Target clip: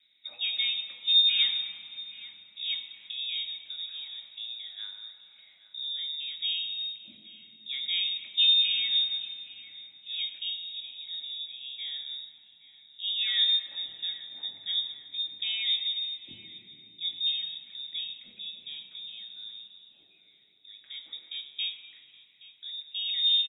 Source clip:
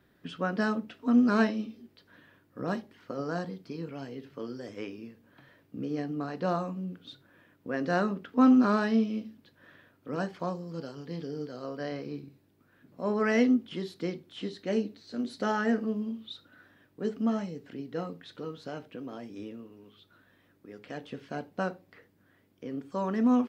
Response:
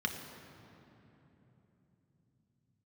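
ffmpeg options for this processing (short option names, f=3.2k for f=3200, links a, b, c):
-filter_complex "[0:a]lowpass=f=3.3k:t=q:w=0.5098,lowpass=f=3.3k:t=q:w=0.6013,lowpass=f=3.3k:t=q:w=0.9,lowpass=f=3.3k:t=q:w=2.563,afreqshift=-3900,asetnsamples=n=441:p=0,asendcmd='5.79 equalizer g -14.5',equalizer=f=1.1k:t=o:w=1.3:g=-8,asplit=2[a][b];[b]adelay=822,lowpass=f=2k:p=1,volume=-14dB,asplit=2[c][d];[d]adelay=822,lowpass=f=2k:p=1,volume=0.48,asplit=2[e][f];[f]adelay=822,lowpass=f=2k:p=1,volume=0.48,asplit=2[g][h];[h]adelay=822,lowpass=f=2k:p=1,volume=0.48,asplit=2[i][j];[j]adelay=822,lowpass=f=2k:p=1,volume=0.48[k];[a][c][e][g][i][k]amix=inputs=6:normalize=0[l];[1:a]atrim=start_sample=2205,asetrate=57330,aresample=44100[m];[l][m]afir=irnorm=-1:irlink=0,volume=-4dB"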